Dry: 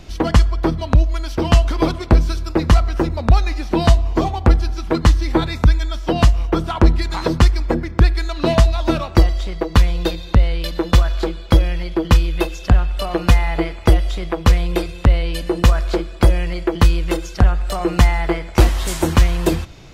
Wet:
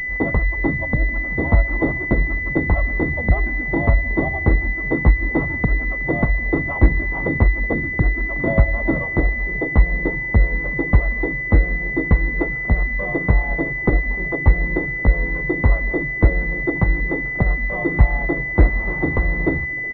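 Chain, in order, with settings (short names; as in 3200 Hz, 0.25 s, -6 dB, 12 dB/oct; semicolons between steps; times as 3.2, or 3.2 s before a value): frequency-shifting echo 0.37 s, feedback 61%, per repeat +95 Hz, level -23 dB; harmoniser -3 st -2 dB; pulse-width modulation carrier 2000 Hz; gain -4.5 dB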